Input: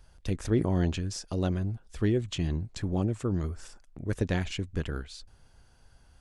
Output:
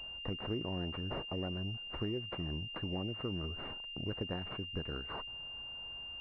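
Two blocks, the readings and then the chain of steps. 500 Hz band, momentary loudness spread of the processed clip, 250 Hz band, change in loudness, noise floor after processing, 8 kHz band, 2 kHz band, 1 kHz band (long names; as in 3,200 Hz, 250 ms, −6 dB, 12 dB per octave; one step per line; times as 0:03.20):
−8.5 dB, 5 LU, −10.0 dB, −8.5 dB, −46 dBFS, below −30 dB, +1.0 dB, −4.0 dB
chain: spectral tilt +2 dB per octave
downward compressor 4 to 1, threshold −42 dBFS, peak gain reduction 15 dB
switching amplifier with a slow clock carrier 2,800 Hz
level +5 dB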